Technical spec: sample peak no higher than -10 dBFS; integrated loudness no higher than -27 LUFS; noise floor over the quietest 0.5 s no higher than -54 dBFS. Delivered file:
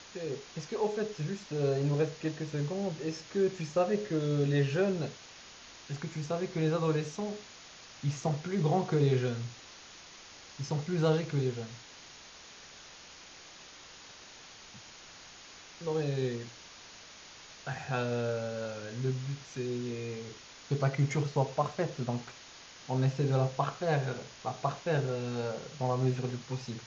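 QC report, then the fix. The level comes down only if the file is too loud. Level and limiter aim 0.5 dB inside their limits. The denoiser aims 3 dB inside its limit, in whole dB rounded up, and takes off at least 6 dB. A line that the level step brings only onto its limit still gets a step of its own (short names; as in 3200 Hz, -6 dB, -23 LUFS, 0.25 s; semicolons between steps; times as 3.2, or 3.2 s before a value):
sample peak -15.5 dBFS: OK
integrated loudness -33.0 LUFS: OK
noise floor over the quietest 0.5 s -52 dBFS: fail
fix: denoiser 6 dB, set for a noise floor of -52 dBFS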